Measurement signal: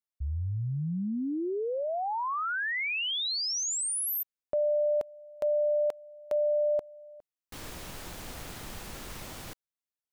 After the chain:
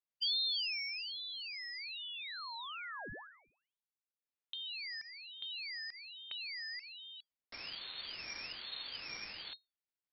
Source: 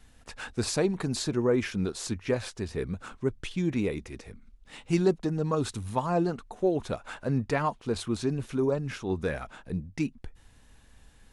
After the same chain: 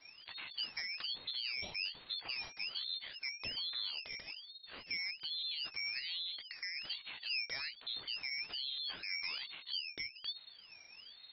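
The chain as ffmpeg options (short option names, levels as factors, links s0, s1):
-filter_complex "[0:a]acrossover=split=110[s0][s1];[s1]acompressor=threshold=0.00501:ratio=4:attack=24:release=35:knee=1:detection=rms[s2];[s0][s2]amix=inputs=2:normalize=0,lowpass=f=3400:t=q:w=0.5098,lowpass=f=3400:t=q:w=0.6013,lowpass=f=3400:t=q:w=0.9,lowpass=f=3400:t=q:w=2.563,afreqshift=-4000,aeval=exprs='val(0)*sin(2*PI*930*n/s+930*0.75/1.2*sin(2*PI*1.2*n/s))':c=same,volume=1.12"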